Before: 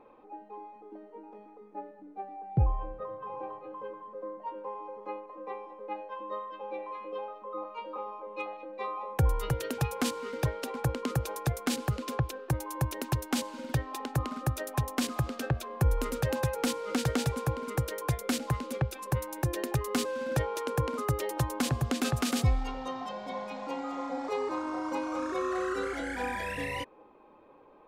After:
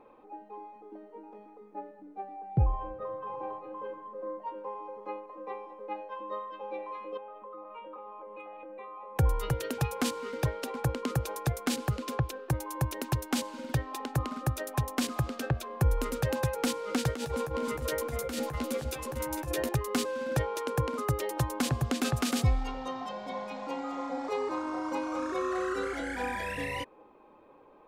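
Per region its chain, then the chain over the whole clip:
2.69–4.39 s: doubling 42 ms -8 dB + tape noise reduction on one side only decoder only
7.17–9.16 s: compression, threshold -41 dBFS + Butterworth band-stop 5.1 kHz, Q 1
17.14–19.69 s: doubling 13 ms -4.5 dB + compressor with a negative ratio -33 dBFS + delay 450 ms -10.5 dB
whole clip: none

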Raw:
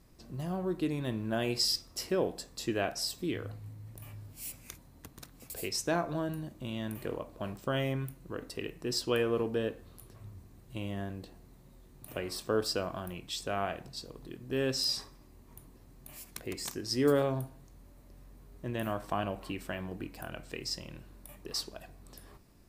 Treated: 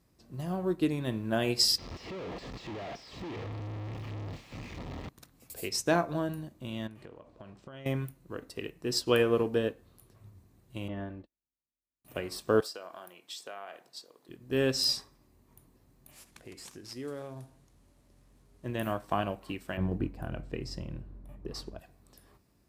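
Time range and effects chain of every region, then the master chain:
1.78–5.09 s: one-bit comparator + distance through air 210 m + band-stop 1.5 kHz, Q 5.7
6.87–7.86 s: low-pass 5.7 kHz + compression 8:1, threshold -40 dBFS
10.88–12.05 s: gate -46 dBFS, range -40 dB + low-pass 2.4 kHz + comb 3.4 ms, depth 52%
12.60–14.29 s: high-pass 460 Hz + compression 5:1, threshold -36 dBFS + band-stop 2.6 kHz, Q 21
16.11–18.65 s: CVSD coder 64 kbps + compression 2.5:1, threshold -42 dBFS
19.77–21.79 s: tilt EQ -3 dB/octave + tape noise reduction on one side only decoder only
whole clip: high-pass 48 Hz; upward expansion 1.5:1, over -49 dBFS; trim +5.5 dB

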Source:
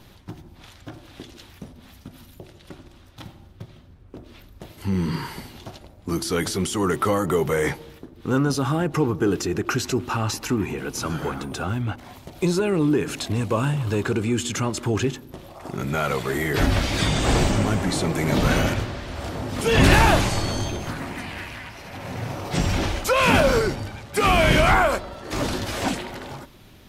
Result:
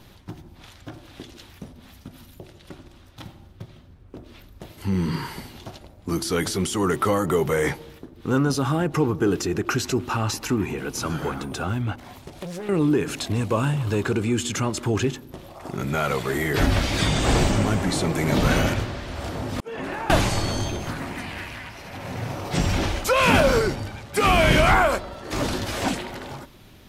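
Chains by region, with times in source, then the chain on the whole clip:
12.22–12.69 s: CVSD coder 64 kbps + compression, threshold -30 dBFS + loudspeaker Doppler distortion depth 0.68 ms
19.60–20.10 s: expander -13 dBFS + three-band isolator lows -18 dB, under 220 Hz, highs -12 dB, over 2 kHz + compression 2.5:1, threshold -32 dBFS
whole clip: none

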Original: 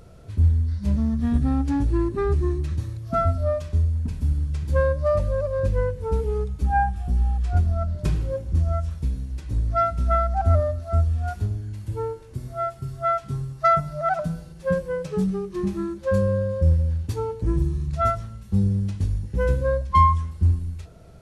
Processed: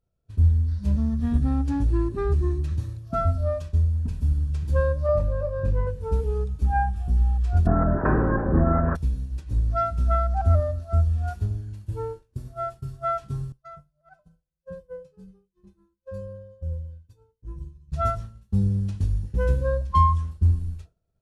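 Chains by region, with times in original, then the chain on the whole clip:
5.06–5.87 s: treble shelf 2.9 kHz -9.5 dB + doubling 27 ms -5.5 dB
7.65–8.95 s: spectral peaks clipped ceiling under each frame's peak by 29 dB + Chebyshev low-pass 1.7 kHz, order 5 + level flattener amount 50%
13.52–17.92 s: bass shelf 280 Hz +5.5 dB + feedback comb 510 Hz, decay 0.23 s, mix 90% + feedback echo behind a low-pass 73 ms, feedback 63%, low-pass 1.2 kHz, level -21.5 dB
whole clip: expander -29 dBFS; bass shelf 75 Hz +7 dB; band-stop 2.1 kHz, Q 9.1; trim -3.5 dB

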